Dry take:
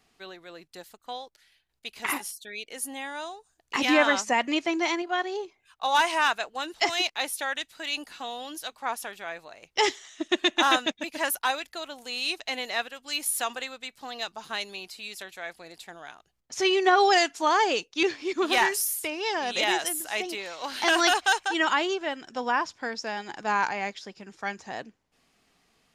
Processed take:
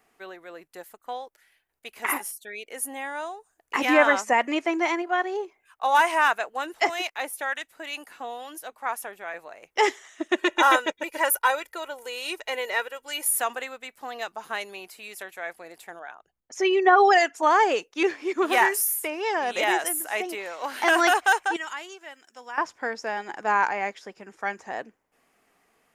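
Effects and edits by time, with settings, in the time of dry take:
6.87–9.34 harmonic tremolo 2.2 Hz, depth 50%, crossover 860 Hz
10.38–13.38 comb 2.1 ms
15.99–17.43 formant sharpening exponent 1.5
21.56–22.58 pre-emphasis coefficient 0.9
whole clip: EQ curve 130 Hz 0 dB, 460 Hz +11 dB, 2000 Hz +10 dB, 4100 Hz -2 dB, 12000 Hz +12 dB; gain -7 dB

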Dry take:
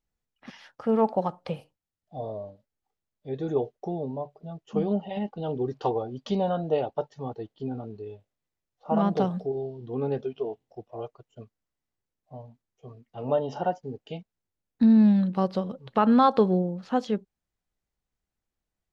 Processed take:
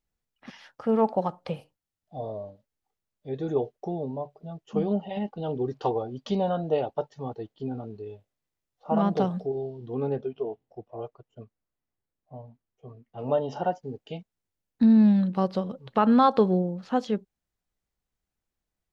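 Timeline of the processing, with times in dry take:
10.09–13.19 high shelf 3300 Hz -12 dB

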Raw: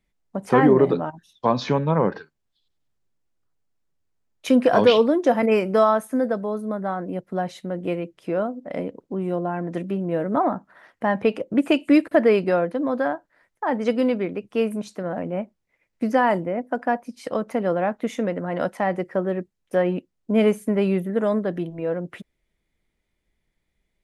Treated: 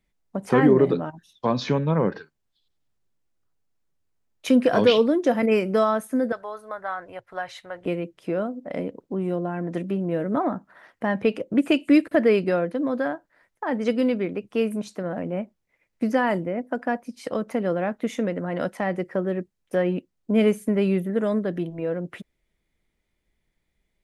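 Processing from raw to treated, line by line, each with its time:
6.32–7.86 EQ curve 110 Hz 0 dB, 200 Hz -25 dB, 810 Hz +2 dB, 1600 Hz +6 dB, 9300 Hz -4 dB
whole clip: dynamic EQ 860 Hz, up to -6 dB, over -33 dBFS, Q 1.2

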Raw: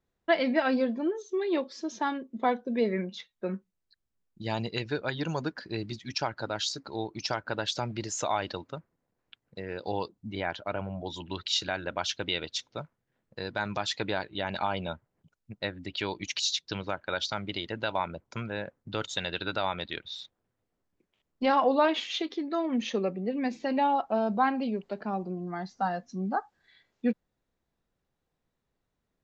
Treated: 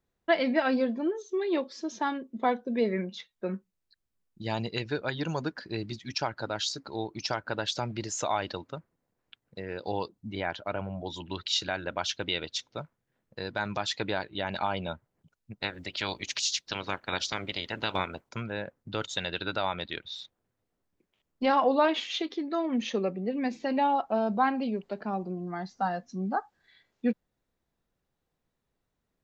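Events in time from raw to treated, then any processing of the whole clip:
15.6–18.28 spectral limiter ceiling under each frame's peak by 16 dB

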